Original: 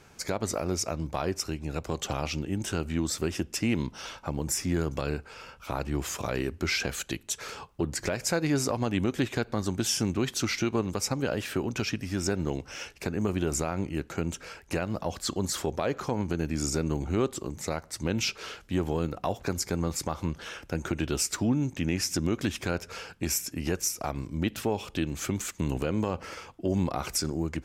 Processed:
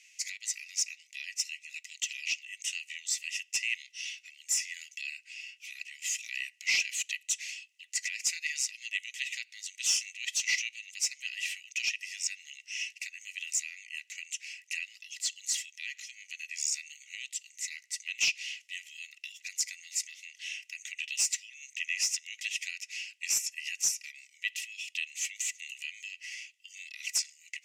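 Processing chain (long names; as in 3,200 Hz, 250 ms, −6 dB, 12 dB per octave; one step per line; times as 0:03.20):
Chebyshev high-pass with heavy ripple 1,900 Hz, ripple 9 dB
mid-hump overdrive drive 9 dB, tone 3,300 Hz, clips at −17 dBFS
level +6 dB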